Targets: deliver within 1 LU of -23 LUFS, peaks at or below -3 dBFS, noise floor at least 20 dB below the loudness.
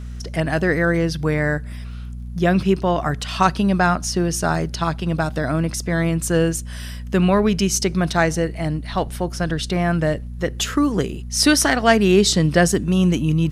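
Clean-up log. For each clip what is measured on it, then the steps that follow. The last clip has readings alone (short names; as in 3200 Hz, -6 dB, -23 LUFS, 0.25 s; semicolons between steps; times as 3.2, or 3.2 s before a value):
ticks 23/s; hum 60 Hz; harmonics up to 240 Hz; hum level -29 dBFS; loudness -19.5 LUFS; peak -1.5 dBFS; loudness target -23.0 LUFS
-> de-click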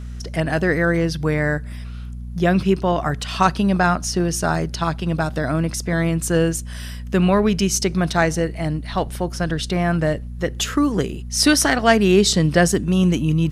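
ticks 0.074/s; hum 60 Hz; harmonics up to 240 Hz; hum level -29 dBFS
-> de-hum 60 Hz, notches 4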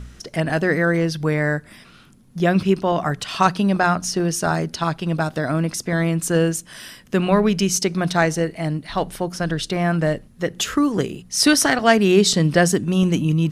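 hum none; loudness -20.0 LUFS; peak -2.0 dBFS; loudness target -23.0 LUFS
-> gain -3 dB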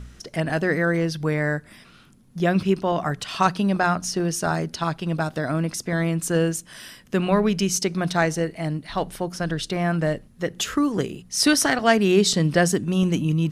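loudness -23.0 LUFS; peak -5.0 dBFS; noise floor -51 dBFS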